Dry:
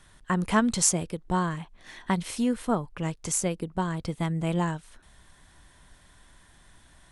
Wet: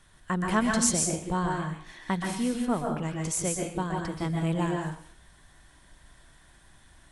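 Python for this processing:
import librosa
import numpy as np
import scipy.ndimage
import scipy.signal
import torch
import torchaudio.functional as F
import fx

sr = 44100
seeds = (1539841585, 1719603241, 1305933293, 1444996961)

y = fx.rev_plate(x, sr, seeds[0], rt60_s=0.55, hf_ratio=0.95, predelay_ms=115, drr_db=0.5)
y = F.gain(torch.from_numpy(y), -3.0).numpy()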